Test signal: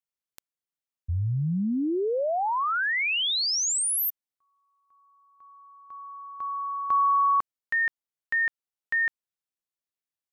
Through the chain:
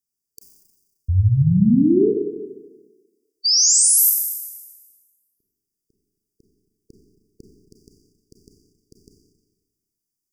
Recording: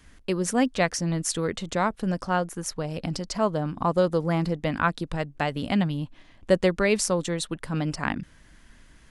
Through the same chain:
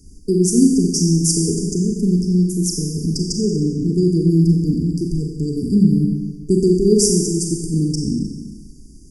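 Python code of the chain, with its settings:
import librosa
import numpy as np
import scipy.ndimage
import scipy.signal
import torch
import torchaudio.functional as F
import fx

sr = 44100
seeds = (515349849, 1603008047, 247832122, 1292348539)

y = fx.brickwall_bandstop(x, sr, low_hz=450.0, high_hz=4600.0)
y = fx.rev_schroeder(y, sr, rt60_s=1.3, comb_ms=30, drr_db=1.0)
y = F.gain(torch.from_numpy(y), 9.0).numpy()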